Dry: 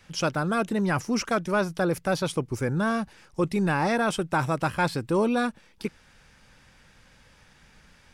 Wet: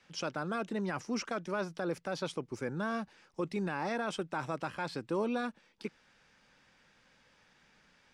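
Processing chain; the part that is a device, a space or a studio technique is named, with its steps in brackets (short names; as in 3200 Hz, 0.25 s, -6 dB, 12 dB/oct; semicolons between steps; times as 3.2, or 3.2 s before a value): DJ mixer with the lows and highs turned down (three-band isolator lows -13 dB, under 170 Hz, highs -16 dB, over 7700 Hz; limiter -16.5 dBFS, peak gain reduction 5.5 dB); gain -7.5 dB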